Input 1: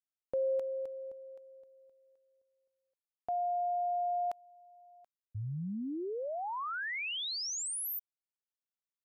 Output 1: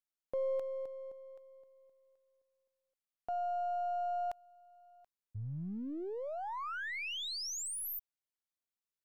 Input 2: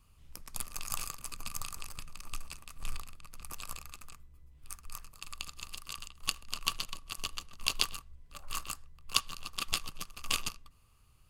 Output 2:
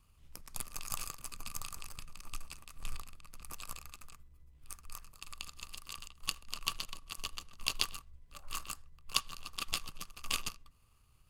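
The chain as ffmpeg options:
-af "aeval=exprs='if(lt(val(0),0),0.708*val(0),val(0))':c=same,volume=-1.5dB"

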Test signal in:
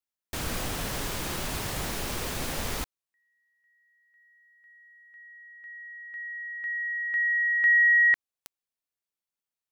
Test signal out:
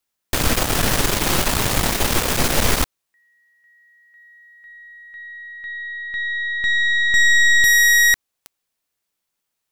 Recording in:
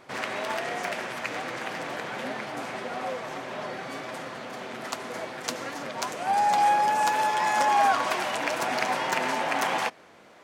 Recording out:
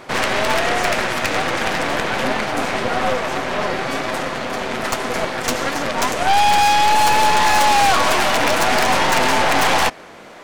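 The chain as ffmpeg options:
-af "asoftclip=type=tanh:threshold=-15dB,aeval=exprs='0.178*(cos(1*acos(clip(val(0)/0.178,-1,1)))-cos(1*PI/2))+0.0398*(cos(5*acos(clip(val(0)/0.178,-1,1)))-cos(5*PI/2))+0.0158*(cos(6*acos(clip(val(0)/0.178,-1,1)))-cos(6*PI/2))+0.0562*(cos(8*acos(clip(val(0)/0.178,-1,1)))-cos(8*PI/2))':c=same,volume=6.5dB"

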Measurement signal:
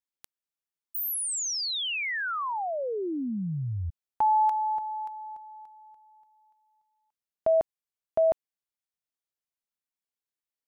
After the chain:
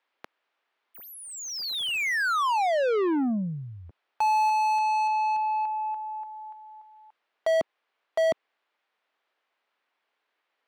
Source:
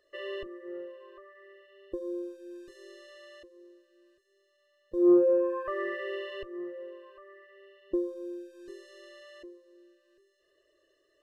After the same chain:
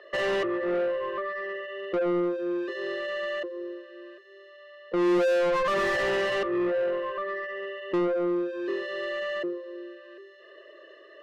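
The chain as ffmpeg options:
-filter_complex "[0:a]acrossover=split=250 3900:gain=0.0708 1 0.0631[a][b][c];[a][b][c]amix=inputs=3:normalize=0,asplit=2[d][e];[e]highpass=f=720:p=1,volume=35dB,asoftclip=type=tanh:threshold=-15dB[f];[d][f]amix=inputs=2:normalize=0,lowpass=f=1.8k:p=1,volume=-6dB,volume=-2.5dB"

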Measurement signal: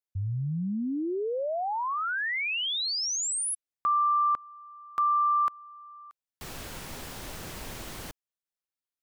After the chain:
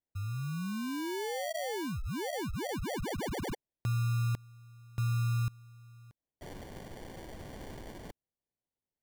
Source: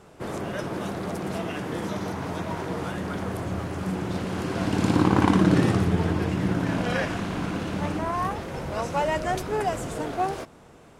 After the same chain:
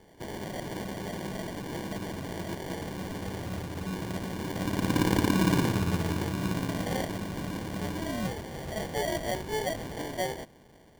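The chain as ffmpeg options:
-af "acrusher=samples=34:mix=1:aa=0.000001,volume=-5.5dB"

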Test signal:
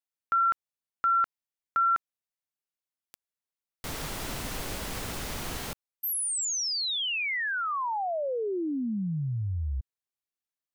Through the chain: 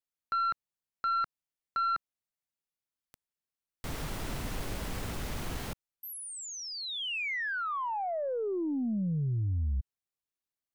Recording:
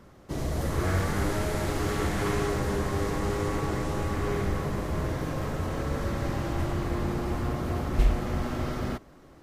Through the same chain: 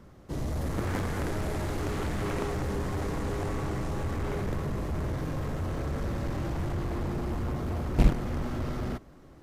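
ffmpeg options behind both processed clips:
-filter_complex "[0:a]lowshelf=f=270:g=6,acrossover=split=3100[a][b];[b]acompressor=threshold=-39dB:ratio=4:attack=1:release=60[c];[a][c]amix=inputs=2:normalize=0,aeval=exprs='0.596*(cos(1*acos(clip(val(0)/0.596,-1,1)))-cos(1*PI/2))+0.0376*(cos(4*acos(clip(val(0)/0.596,-1,1)))-cos(4*PI/2))+0.0531*(cos(6*acos(clip(val(0)/0.596,-1,1)))-cos(6*PI/2))+0.211*(cos(7*acos(clip(val(0)/0.596,-1,1)))-cos(7*PI/2))+0.0133*(cos(8*acos(clip(val(0)/0.596,-1,1)))-cos(8*PI/2))':c=same,volume=-6.5dB"

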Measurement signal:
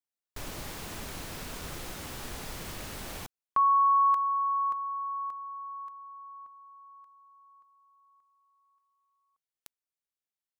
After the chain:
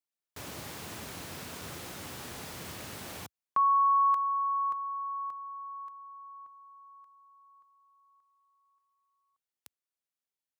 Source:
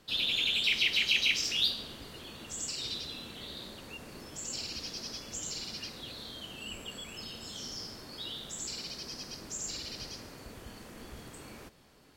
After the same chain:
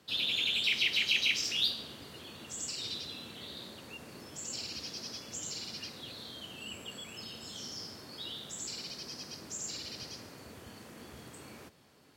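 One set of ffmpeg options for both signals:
-af "highpass=f=77:w=0.5412,highpass=f=77:w=1.3066,volume=-1.5dB"

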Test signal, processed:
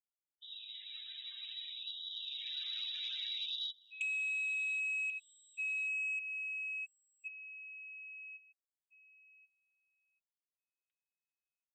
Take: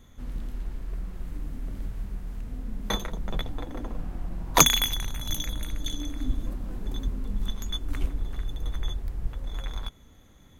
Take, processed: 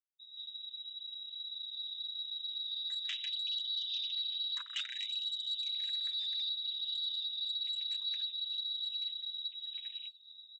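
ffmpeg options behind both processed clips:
-filter_complex "[0:a]acrossover=split=3000[a][b];[a]adelay=190[c];[c][b]amix=inputs=2:normalize=0,afftdn=nr=33:nf=-49,acompressor=threshold=-43dB:ratio=6,lowpass=f=3.3k:t=q:w=0.5098,lowpass=f=3.3k:t=q:w=0.6013,lowpass=f=3.3k:t=q:w=0.9,lowpass=f=3.3k:t=q:w=2.563,afreqshift=-3900,lowshelf=f=110:g=-9,aecho=1:1:6.9:0.51,dynaudnorm=f=410:g=11:m=10dB,aresample=16000,asoftclip=type=tanh:threshold=-31.5dB,aresample=44100,bandreject=f=50:t=h:w=6,bandreject=f=100:t=h:w=6,bandreject=f=150:t=h:w=6,bandreject=f=200:t=h:w=6,bandreject=f=250:t=h:w=6,bandreject=f=300:t=h:w=6,asplit=2[d][e];[e]aecho=0:1:1084|2168:0.0631|0.0227[f];[d][f]amix=inputs=2:normalize=0,afftfilt=real='re*gte(b*sr/1024,930*pow(3000/930,0.5+0.5*sin(2*PI*0.6*pts/sr)))':imag='im*gte(b*sr/1024,930*pow(3000/930,0.5+0.5*sin(2*PI*0.6*pts/sr)))':win_size=1024:overlap=0.75"

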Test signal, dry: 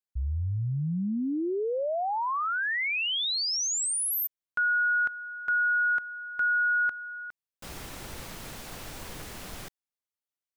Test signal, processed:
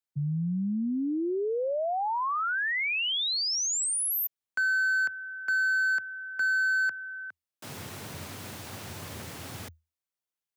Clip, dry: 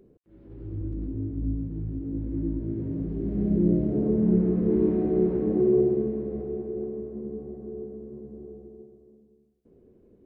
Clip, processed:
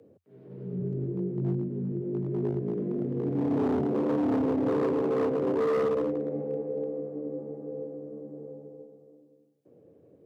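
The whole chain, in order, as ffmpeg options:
-af "asoftclip=type=hard:threshold=-23.5dB,afreqshift=80"

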